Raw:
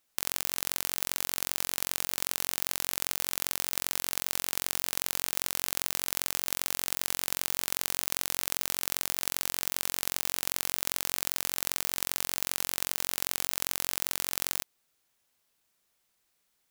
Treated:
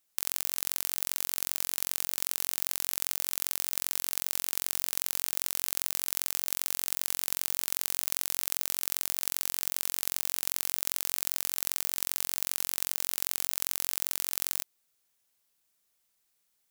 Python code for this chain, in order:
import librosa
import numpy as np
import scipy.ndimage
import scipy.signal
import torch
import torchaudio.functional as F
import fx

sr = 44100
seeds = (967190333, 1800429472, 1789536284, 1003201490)

y = fx.high_shelf(x, sr, hz=4700.0, db=7.0)
y = y * librosa.db_to_amplitude(-5.5)